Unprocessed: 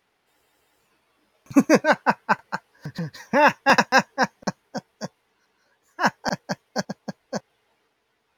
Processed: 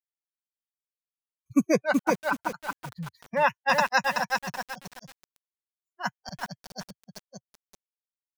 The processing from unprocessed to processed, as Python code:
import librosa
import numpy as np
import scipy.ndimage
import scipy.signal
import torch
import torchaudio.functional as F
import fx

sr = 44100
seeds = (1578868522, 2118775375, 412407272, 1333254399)

y = fx.bin_expand(x, sr, power=2.0)
y = fx.echo_crushed(y, sr, ms=378, feedback_pct=35, bits=6, wet_db=-3)
y = y * 10.0 ** (-3.5 / 20.0)